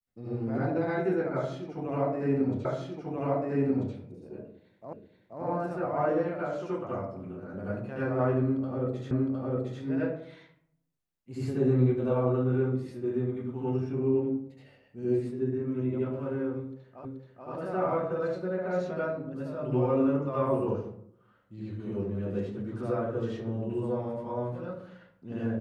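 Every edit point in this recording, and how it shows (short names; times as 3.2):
2.65 repeat of the last 1.29 s
4.93 repeat of the last 0.48 s
9.11 repeat of the last 0.71 s
17.05 repeat of the last 0.43 s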